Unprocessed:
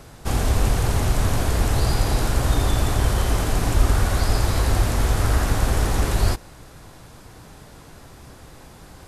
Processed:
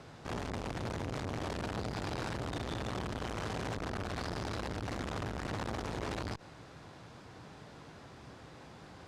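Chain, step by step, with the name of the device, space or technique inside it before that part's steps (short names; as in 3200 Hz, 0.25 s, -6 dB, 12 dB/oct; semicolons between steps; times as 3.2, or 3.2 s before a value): valve radio (BPF 100–4800 Hz; tube stage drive 25 dB, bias 0.55; core saturation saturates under 440 Hz); gain -3 dB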